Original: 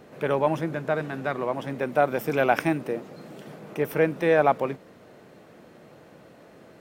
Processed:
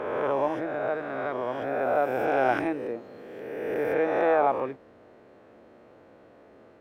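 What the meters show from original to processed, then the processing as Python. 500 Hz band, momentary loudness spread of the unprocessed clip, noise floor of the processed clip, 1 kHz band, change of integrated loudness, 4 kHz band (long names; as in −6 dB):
−1.0 dB, 18 LU, −54 dBFS, −0.5 dB, −2.0 dB, can't be measured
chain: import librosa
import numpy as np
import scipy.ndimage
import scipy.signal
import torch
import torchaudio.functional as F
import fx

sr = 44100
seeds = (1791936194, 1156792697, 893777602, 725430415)

y = fx.spec_swells(x, sr, rise_s=1.91)
y = fx.lowpass(y, sr, hz=1500.0, slope=6)
y = fx.peak_eq(y, sr, hz=160.0, db=-14.5, octaves=0.49)
y = y * 10.0 ** (-4.5 / 20.0)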